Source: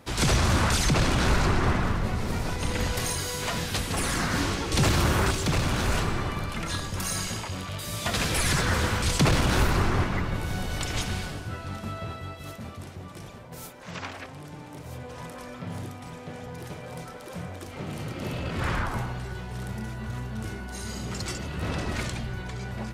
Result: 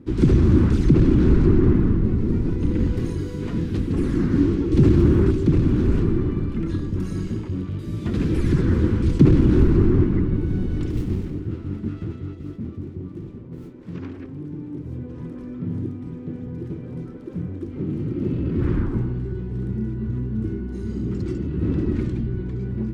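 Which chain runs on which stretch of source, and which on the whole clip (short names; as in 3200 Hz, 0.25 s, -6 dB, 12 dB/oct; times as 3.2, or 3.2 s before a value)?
10.9–13.94 self-modulated delay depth 0.99 ms + notch 1600 Hz, Q 19
whole clip: LPF 1200 Hz 6 dB/oct; resonant low shelf 470 Hz +12 dB, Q 3; gain -5 dB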